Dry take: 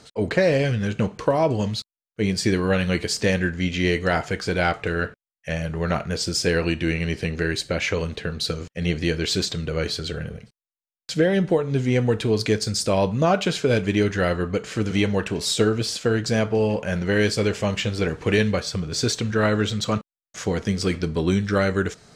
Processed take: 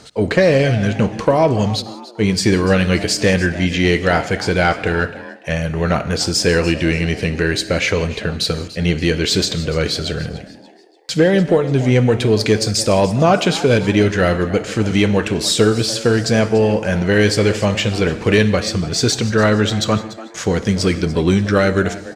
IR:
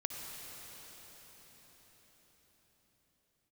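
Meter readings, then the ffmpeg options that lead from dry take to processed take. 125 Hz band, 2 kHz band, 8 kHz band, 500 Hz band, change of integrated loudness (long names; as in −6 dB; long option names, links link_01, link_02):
+6.5 dB, +6.5 dB, +7.0 dB, +6.5 dB, +6.5 dB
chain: -filter_complex "[0:a]acontrast=58,asplit=4[link_01][link_02][link_03][link_04];[link_02]adelay=291,afreqshift=120,volume=-17dB[link_05];[link_03]adelay=582,afreqshift=240,volume=-25.6dB[link_06];[link_04]adelay=873,afreqshift=360,volume=-34.3dB[link_07];[link_01][link_05][link_06][link_07]amix=inputs=4:normalize=0,asplit=2[link_08][link_09];[1:a]atrim=start_sample=2205,afade=type=out:start_time=0.24:duration=0.01,atrim=end_sample=11025[link_10];[link_09][link_10]afir=irnorm=-1:irlink=0,volume=-5.5dB[link_11];[link_08][link_11]amix=inputs=2:normalize=0,volume=-2.5dB"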